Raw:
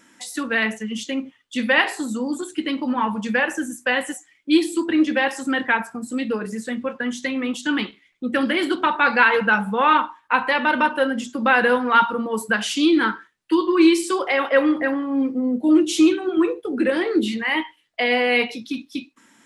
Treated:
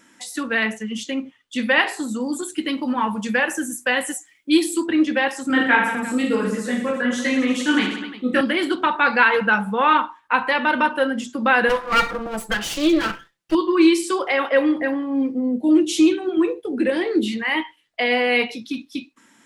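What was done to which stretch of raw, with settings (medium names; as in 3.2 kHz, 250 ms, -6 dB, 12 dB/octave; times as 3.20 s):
2.20–4.87 s: treble shelf 7.9 kHz +11.5 dB
5.48–8.41 s: reverse bouncing-ball echo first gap 20 ms, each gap 1.3×, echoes 7, each echo -2 dB
11.69–13.55 s: comb filter that takes the minimum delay 5.9 ms
14.54–17.32 s: peaking EQ 1.3 kHz -7.5 dB 0.45 oct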